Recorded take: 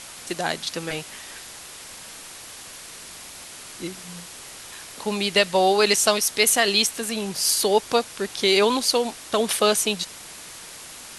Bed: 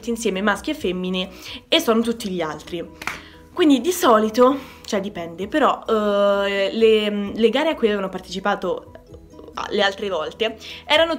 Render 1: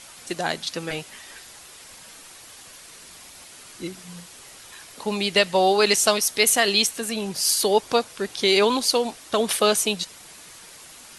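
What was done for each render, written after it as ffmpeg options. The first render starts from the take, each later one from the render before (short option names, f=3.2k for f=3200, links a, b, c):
-af "afftdn=nr=6:nf=-41"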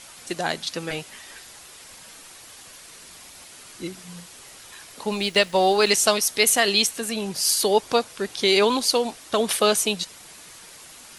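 -filter_complex "[0:a]asettb=1/sr,asplit=3[a][b][c];[a]atrim=end=5.134[d];[b]atrim=start=5.13:end=5.9,asetpts=PTS-STARTPTS,afade=t=in:d=0.004:c=qsin,afade=t=out:st=0.766:d=0.004:c=qsin,aeval=exprs='sgn(val(0))*max(abs(val(0))-0.00631,0)':c=same[e];[c]atrim=start=5.896[f];[d][e]acrossfade=d=0.004:c1=hsin:c2=qsin[g];[g][f]acrossfade=d=0.004:c1=qsin:c2=hsin"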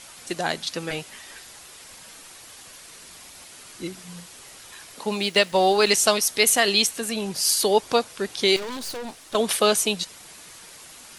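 -filter_complex "[0:a]asettb=1/sr,asplit=3[a][b][c];[a]atrim=end=4.994[d];[b]atrim=start=4.99:end=5.52,asetpts=PTS-STARTPTS,afade=t=in:d=0.004:c=qsin,afade=t=out:st=0.526:d=0.004:c=qsin,highpass=120[e];[c]atrim=start=5.516[f];[d][e]acrossfade=d=0.004:c1=hsin:c2=qsin[g];[g][f]acrossfade=d=0.004:c1=qsin:c2=hsin,asettb=1/sr,asplit=3[h][i][j];[h]atrim=end=8.564[k];[i]atrim=start=8.56:end=9.35,asetpts=PTS-STARTPTS,afade=t=in:d=0.004:c=qsin,afade=t=out:st=0.786:d=0.004:c=qsin,aeval=exprs='(tanh(35.5*val(0)+0.55)-tanh(0.55))/35.5':c=same[l];[j]atrim=start=9.346[m];[k][l]acrossfade=d=0.004:c1=hsin:c2=qsin[n];[n][m]acrossfade=d=0.004:c1=qsin:c2=hsin"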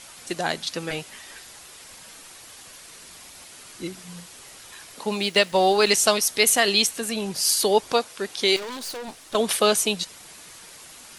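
-filter_complex "[0:a]asettb=1/sr,asplit=3[a][b][c];[a]atrim=end=7.924[d];[b]atrim=start=7.92:end=9.08,asetpts=PTS-STARTPTS,afade=t=in:d=0.004:c=qsin,afade=t=out:st=1.156:d=0.004:c=qsin,lowshelf=f=170:g=-10[e];[c]atrim=start=9.076[f];[d][e]acrossfade=d=0.004:c1=hsin:c2=qsin[g];[g][f]acrossfade=d=0.004:c1=qsin:c2=hsin"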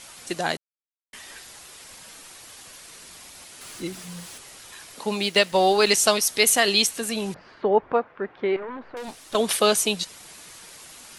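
-filter_complex "[0:a]asettb=1/sr,asplit=3[a][b][c];[a]atrim=end=3.614[d];[b]atrim=start=3.61:end=4.38,asetpts=PTS-STARTPTS,afade=t=in:d=0.004:c=qsin,afade=t=out:st=0.766:d=0.004:c=qsin,aeval=exprs='val(0)+0.5*0.00708*sgn(val(0))':c=same[e];[c]atrim=start=4.376[f];[d][e]acrossfade=d=0.004:c1=hsin:c2=qsin[g];[g][f]acrossfade=d=0.004:c1=qsin:c2=hsin,asettb=1/sr,asplit=3[h][i][j];[h]atrim=end=7.344[k];[i]atrim=start=7.34:end=8.97,asetpts=PTS-STARTPTS,afade=t=in:d=0.004:c=qsin,afade=t=out:st=1.626:d=0.004:c=qsin,lowpass=f=1.8k:w=0.5412,lowpass=f=1.8k:w=1.3066[l];[j]atrim=start=8.966[m];[k][l]acrossfade=d=0.004:c1=hsin:c2=qsin[n];[n][m]acrossfade=d=0.004:c1=qsin:c2=hsin,asplit=3[o][p][q];[o]atrim=end=0.57,asetpts=PTS-STARTPTS,afade=t=out:st=0.566:d=0.004:c=hsin[r];[p]atrim=start=0.57:end=1.13,asetpts=PTS-STARTPTS,volume=0[s];[q]atrim=start=1.13,asetpts=PTS-STARTPTS,afade=t=in:d=0.004:c=hsin[t];[r][s][t]concat=n=3:v=0:a=1"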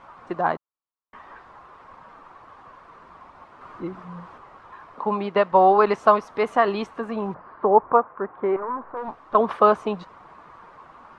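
-af "lowpass=f=1.1k:t=q:w=4"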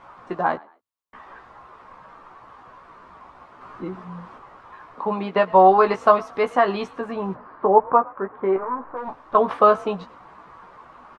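-filter_complex "[0:a]asplit=2[a][b];[b]adelay=16,volume=-6dB[c];[a][c]amix=inputs=2:normalize=0,asplit=3[d][e][f];[e]adelay=112,afreqshift=45,volume=-23.5dB[g];[f]adelay=224,afreqshift=90,volume=-33.4dB[h];[d][g][h]amix=inputs=3:normalize=0"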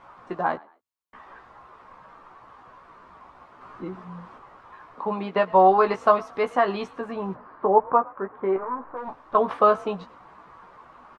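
-af "volume=-3dB"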